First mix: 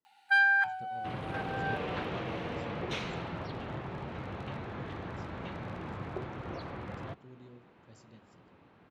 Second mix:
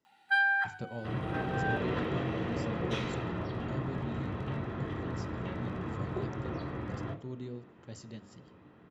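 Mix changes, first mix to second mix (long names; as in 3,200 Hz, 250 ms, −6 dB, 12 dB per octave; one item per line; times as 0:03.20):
speech +11.5 dB
reverb: on, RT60 0.40 s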